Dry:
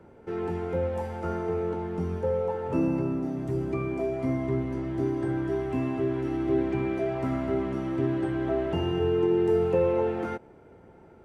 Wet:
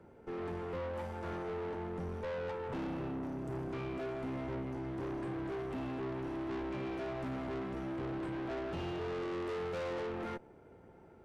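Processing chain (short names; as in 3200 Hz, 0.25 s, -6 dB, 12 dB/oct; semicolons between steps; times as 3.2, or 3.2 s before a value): tube stage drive 34 dB, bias 0.6; gain -2.5 dB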